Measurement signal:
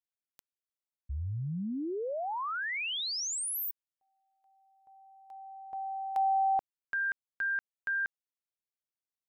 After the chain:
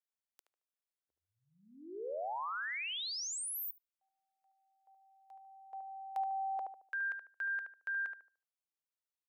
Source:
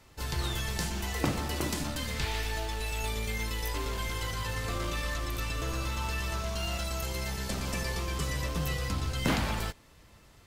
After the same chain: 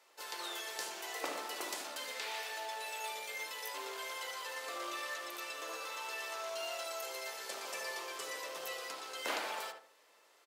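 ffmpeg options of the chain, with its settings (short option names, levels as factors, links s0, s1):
-filter_complex "[0:a]highpass=f=440:w=0.5412,highpass=f=440:w=1.3066,asplit=2[s0][s1];[s1]adelay=74,lowpass=f=1300:p=1,volume=0.668,asplit=2[s2][s3];[s3]adelay=74,lowpass=f=1300:p=1,volume=0.37,asplit=2[s4][s5];[s5]adelay=74,lowpass=f=1300:p=1,volume=0.37,asplit=2[s6][s7];[s7]adelay=74,lowpass=f=1300:p=1,volume=0.37,asplit=2[s8][s9];[s9]adelay=74,lowpass=f=1300:p=1,volume=0.37[s10];[s0][s2][s4][s6][s8][s10]amix=inputs=6:normalize=0,volume=0.531"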